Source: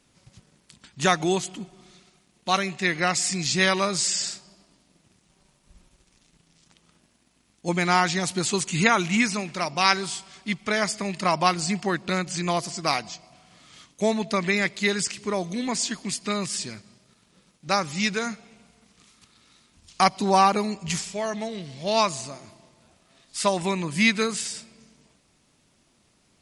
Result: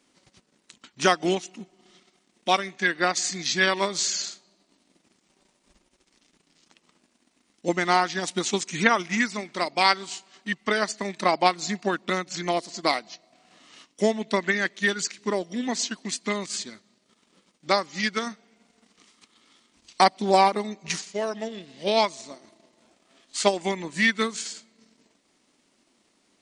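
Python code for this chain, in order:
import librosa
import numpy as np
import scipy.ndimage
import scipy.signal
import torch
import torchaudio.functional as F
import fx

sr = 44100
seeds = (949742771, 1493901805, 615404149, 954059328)

y = fx.transient(x, sr, attack_db=4, sustain_db=-7)
y = fx.formant_shift(y, sr, semitones=-2)
y = fx.low_shelf_res(y, sr, hz=180.0, db=-13.0, q=1.5)
y = y * librosa.db_to_amplitude(-1.5)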